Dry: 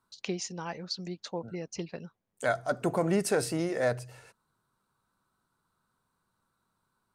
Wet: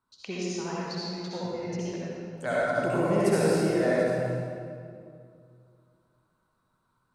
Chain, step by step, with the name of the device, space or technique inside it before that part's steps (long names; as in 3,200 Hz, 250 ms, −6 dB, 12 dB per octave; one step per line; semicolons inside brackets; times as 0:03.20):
swimming-pool hall (convolution reverb RT60 2.3 s, pre-delay 58 ms, DRR −7.5 dB; high-shelf EQ 4,900 Hz −6 dB)
level −4 dB